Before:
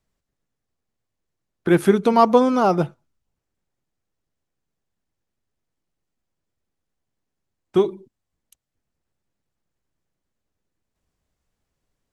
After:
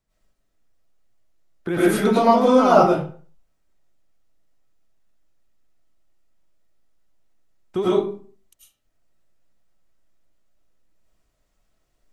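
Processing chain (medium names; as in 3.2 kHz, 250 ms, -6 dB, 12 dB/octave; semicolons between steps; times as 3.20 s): peak limiter -12.5 dBFS, peak gain reduction 10 dB; reverberation RT60 0.45 s, pre-delay 65 ms, DRR -10 dB; trim -3.5 dB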